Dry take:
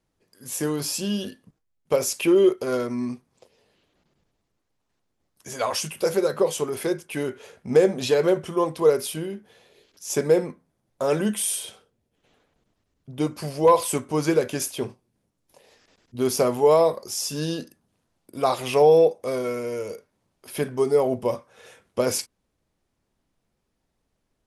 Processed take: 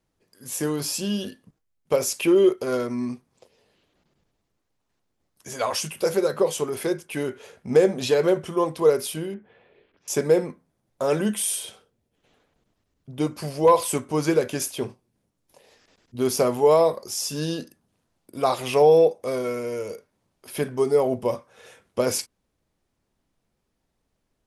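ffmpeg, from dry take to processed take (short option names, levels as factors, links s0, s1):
-filter_complex "[0:a]asettb=1/sr,asplit=3[s0][s1][s2];[s0]atrim=end=9.344[s3];[s1]atrim=start=9.34:end=10.08,asetpts=PTS-STARTPTS,afade=t=in:d=0.004:c=qsin,afade=t=out:st=0.736:d=0.004:c=qsin,lowpass=f=2600:w=0.5412,lowpass=f=2600:w=1.3066[s4];[s2]atrim=start=10.076[s5];[s3][s4]acrossfade=d=0.004:c1=hsin:c2=qsin[s6];[s6][s5]acrossfade=d=0.004:c1=qsin:c2=hsin"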